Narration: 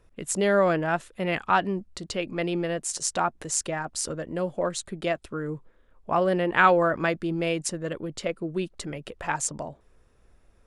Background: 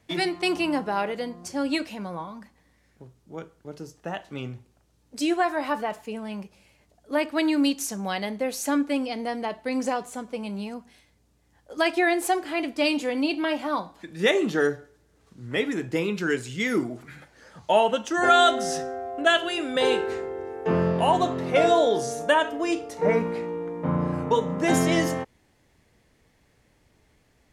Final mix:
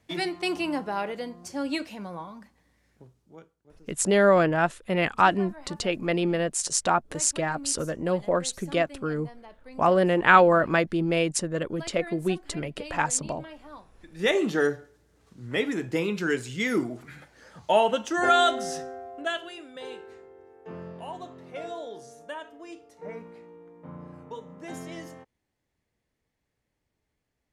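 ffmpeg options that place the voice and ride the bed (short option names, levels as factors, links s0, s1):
-filter_complex "[0:a]adelay=3700,volume=1.33[s0];[1:a]volume=5.01,afade=t=out:st=2.95:d=0.61:silence=0.177828,afade=t=in:st=13.95:d=0.41:silence=0.133352,afade=t=out:st=18.02:d=1.7:silence=0.149624[s1];[s0][s1]amix=inputs=2:normalize=0"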